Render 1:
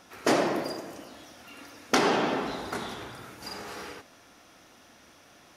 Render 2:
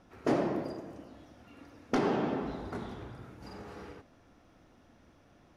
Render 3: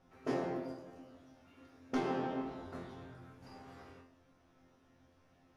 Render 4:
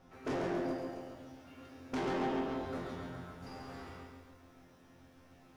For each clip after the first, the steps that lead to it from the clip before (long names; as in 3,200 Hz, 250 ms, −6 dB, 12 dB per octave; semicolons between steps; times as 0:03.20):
spectral tilt −3.5 dB per octave; level −8.5 dB
resonators tuned to a chord F2 fifth, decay 0.39 s; level +6 dB
soft clipping −38.5 dBFS, distortion −7 dB; feedback echo at a low word length 137 ms, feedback 55%, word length 13 bits, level −5 dB; level +6 dB